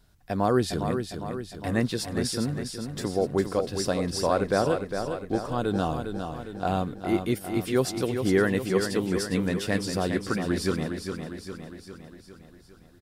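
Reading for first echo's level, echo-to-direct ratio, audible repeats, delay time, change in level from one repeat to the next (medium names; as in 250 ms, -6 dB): -7.0 dB, -5.5 dB, 6, 406 ms, -5.0 dB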